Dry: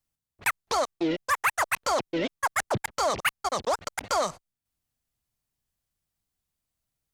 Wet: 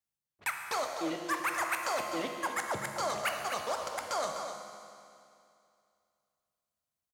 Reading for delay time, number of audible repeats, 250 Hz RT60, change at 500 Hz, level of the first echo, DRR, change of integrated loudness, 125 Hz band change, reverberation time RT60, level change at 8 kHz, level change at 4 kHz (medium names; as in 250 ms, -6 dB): 252 ms, 1, 2.5 s, -6.5 dB, -8.0 dB, 1.5 dB, -6.0 dB, -10.5 dB, 2.5 s, -6.0 dB, -6.0 dB